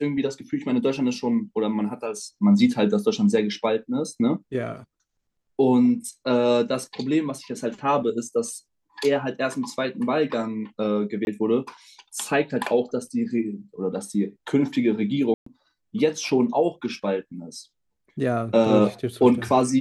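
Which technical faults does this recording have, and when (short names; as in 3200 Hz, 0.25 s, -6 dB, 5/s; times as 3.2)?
11.25–11.27 gap 21 ms
15.34–15.46 gap 0.124 s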